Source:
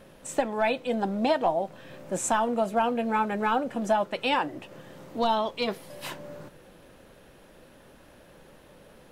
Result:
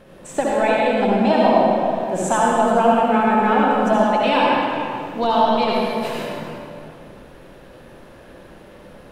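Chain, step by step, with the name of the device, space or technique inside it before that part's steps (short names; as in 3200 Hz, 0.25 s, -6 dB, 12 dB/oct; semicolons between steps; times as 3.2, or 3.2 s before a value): swimming-pool hall (reverb RT60 2.4 s, pre-delay 60 ms, DRR -5 dB; high shelf 4800 Hz -7.5 dB); gain +4 dB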